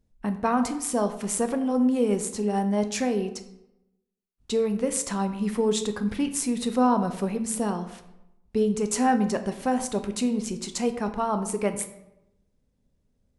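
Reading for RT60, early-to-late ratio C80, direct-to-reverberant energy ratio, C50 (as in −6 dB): 0.85 s, 13.5 dB, 8.0 dB, 11.0 dB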